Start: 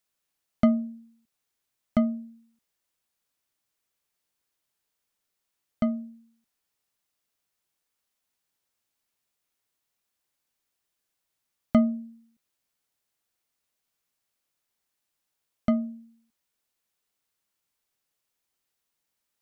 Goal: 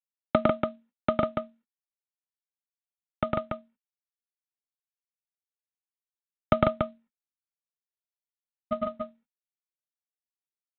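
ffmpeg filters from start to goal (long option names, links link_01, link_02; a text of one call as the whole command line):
ffmpeg -i in.wav -filter_complex "[0:a]acrossover=split=170 2400:gain=0.0708 1 0.0631[link_01][link_02][link_03];[link_01][link_02][link_03]amix=inputs=3:normalize=0,agate=range=-46dB:threshold=-55dB:ratio=16:detection=peak,atempo=1.8,aecho=1:1:2.2:0.86,asplit=2[link_04][link_05];[link_05]aecho=0:1:105|145.8|285.7:0.891|0.708|0.562[link_06];[link_04][link_06]amix=inputs=2:normalize=0,asubboost=boost=5:cutoff=100,aresample=8000,acrusher=bits=6:mode=log:mix=0:aa=0.000001,aresample=44100,volume=8dB" out.wav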